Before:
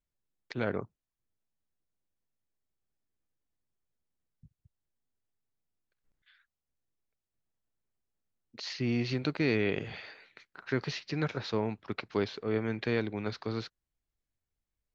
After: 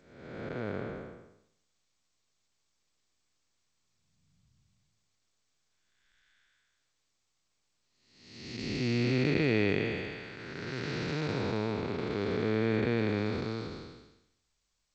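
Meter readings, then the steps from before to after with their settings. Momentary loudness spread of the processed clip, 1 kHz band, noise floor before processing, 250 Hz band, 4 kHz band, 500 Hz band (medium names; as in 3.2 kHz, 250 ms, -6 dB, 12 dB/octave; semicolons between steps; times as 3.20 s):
16 LU, +1.0 dB, under -85 dBFS, +2.0 dB, +0.5 dB, +1.5 dB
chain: spectral blur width 591 ms; trim +6 dB; G.722 64 kbps 16 kHz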